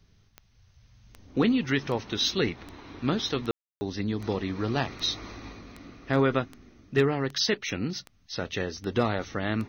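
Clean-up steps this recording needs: clip repair -13 dBFS; de-click; room tone fill 3.51–3.81 s

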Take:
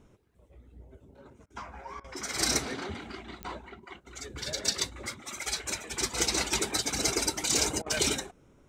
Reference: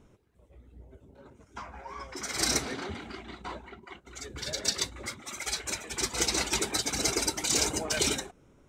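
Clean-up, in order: de-click; interpolate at 1.46/2.00/7.82 s, 41 ms

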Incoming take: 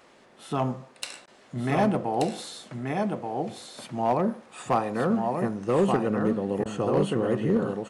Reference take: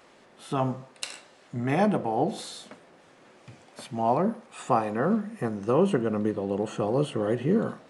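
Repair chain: clip repair -15.5 dBFS; interpolate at 1.26/6.64 s, 14 ms; inverse comb 1181 ms -4.5 dB

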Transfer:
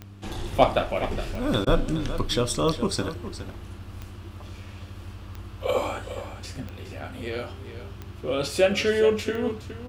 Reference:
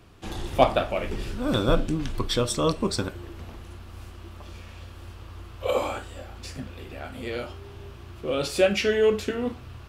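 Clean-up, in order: de-click; de-hum 99.3 Hz, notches 3; interpolate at 1.65 s, 15 ms; inverse comb 416 ms -12 dB

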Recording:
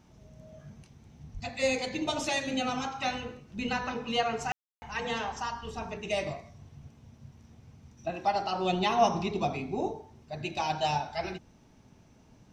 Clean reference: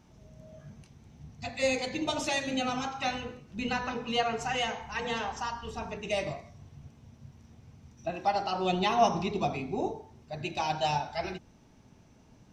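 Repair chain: 1.33–1.45 s: high-pass 140 Hz 24 dB/octave; room tone fill 4.52–4.82 s

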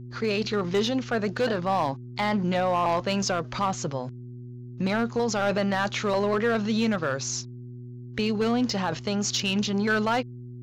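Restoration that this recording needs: clip repair -18 dBFS; de-hum 122.2 Hz, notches 3

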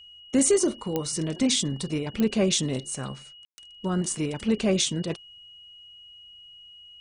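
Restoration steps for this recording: de-click; band-stop 2.9 kHz, Q 30; room tone fill 3.45–3.58 s

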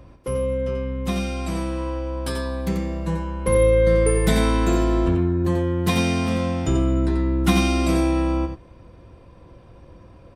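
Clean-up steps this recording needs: inverse comb 88 ms -6.5 dB

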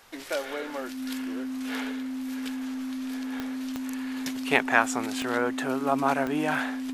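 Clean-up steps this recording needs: de-click; band-stop 260 Hz, Q 30

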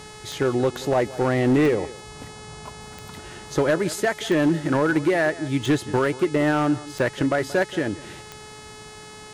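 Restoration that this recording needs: clip repair -14 dBFS; de-click; de-hum 427.3 Hz, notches 23; inverse comb 179 ms -18.5 dB

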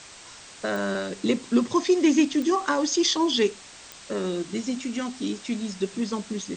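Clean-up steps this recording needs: de-click; noise print and reduce 23 dB

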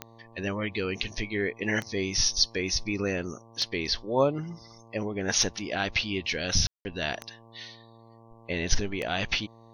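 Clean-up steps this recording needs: de-click; de-hum 114.2 Hz, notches 10; room tone fill 6.67–6.85 s

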